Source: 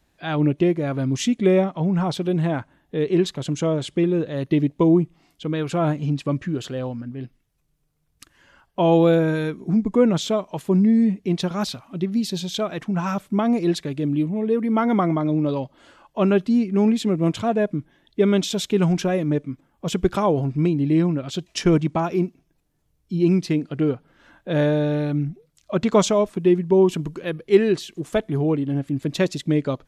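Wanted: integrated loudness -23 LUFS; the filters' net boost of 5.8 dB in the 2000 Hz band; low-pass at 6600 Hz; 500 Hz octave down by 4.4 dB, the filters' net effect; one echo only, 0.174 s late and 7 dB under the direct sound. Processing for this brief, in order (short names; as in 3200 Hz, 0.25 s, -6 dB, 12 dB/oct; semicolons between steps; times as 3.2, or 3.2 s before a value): LPF 6600 Hz; bell 500 Hz -6.5 dB; bell 2000 Hz +8 dB; echo 0.174 s -7 dB; gain -0.5 dB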